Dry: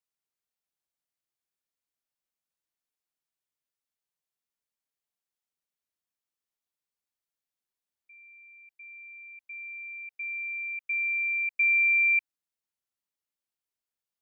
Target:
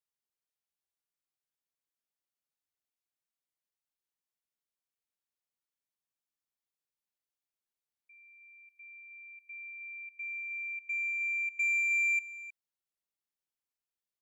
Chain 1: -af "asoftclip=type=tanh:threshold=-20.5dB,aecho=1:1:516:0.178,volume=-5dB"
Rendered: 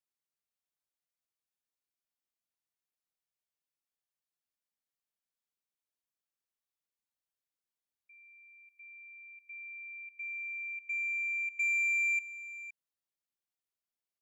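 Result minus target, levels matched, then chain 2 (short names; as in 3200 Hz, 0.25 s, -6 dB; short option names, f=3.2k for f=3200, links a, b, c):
echo 0.202 s late
-af "asoftclip=type=tanh:threshold=-20.5dB,aecho=1:1:314:0.178,volume=-5dB"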